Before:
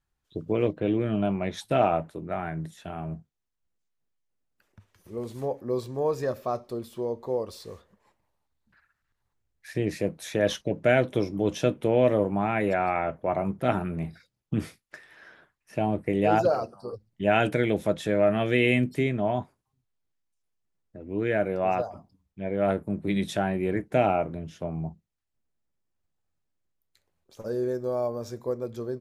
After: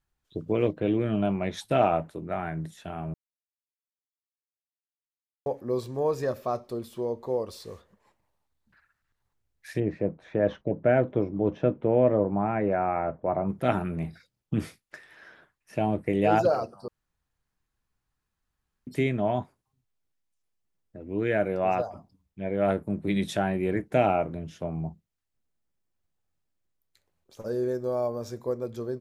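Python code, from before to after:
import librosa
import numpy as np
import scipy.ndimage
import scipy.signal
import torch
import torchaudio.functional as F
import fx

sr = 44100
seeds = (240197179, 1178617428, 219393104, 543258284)

y = fx.lowpass(x, sr, hz=1300.0, slope=12, at=(9.79, 13.48), fade=0.02)
y = fx.edit(y, sr, fx.silence(start_s=3.14, length_s=2.32),
    fx.room_tone_fill(start_s=16.88, length_s=1.99), tone=tone)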